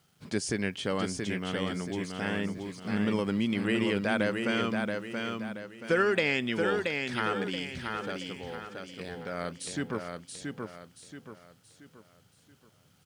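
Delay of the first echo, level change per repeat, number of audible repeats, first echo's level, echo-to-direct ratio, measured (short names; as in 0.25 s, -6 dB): 0.678 s, -8.0 dB, 4, -4.5 dB, -4.0 dB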